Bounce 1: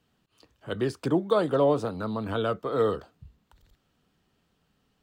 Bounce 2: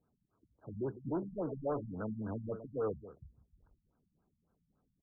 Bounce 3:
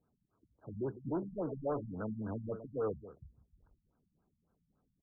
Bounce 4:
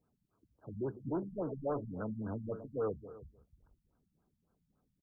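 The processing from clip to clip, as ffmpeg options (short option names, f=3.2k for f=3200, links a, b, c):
-af "asoftclip=type=tanh:threshold=-24dB,aecho=1:1:156:0.237,afftfilt=real='re*lt(b*sr/1024,210*pow(1700/210,0.5+0.5*sin(2*PI*3.6*pts/sr)))':imag='im*lt(b*sr/1024,210*pow(1700/210,0.5+0.5*sin(2*PI*3.6*pts/sr)))':win_size=1024:overlap=0.75,volume=-6dB"
-af anull
-filter_complex "[0:a]asplit=2[a][b];[b]adelay=303.2,volume=-18dB,highshelf=f=4k:g=-6.82[c];[a][c]amix=inputs=2:normalize=0"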